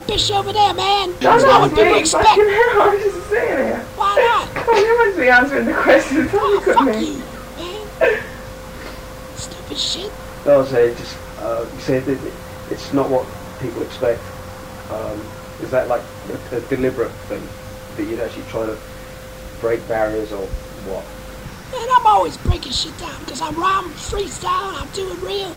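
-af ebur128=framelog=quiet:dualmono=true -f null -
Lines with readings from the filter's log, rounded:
Integrated loudness:
  I:         -13.9 LUFS
  Threshold: -25.1 LUFS
Loudness range:
  LRA:        11.1 LU
  Threshold: -35.4 LUFS
  LRA low:   -21.5 LUFS
  LRA high:  -10.4 LUFS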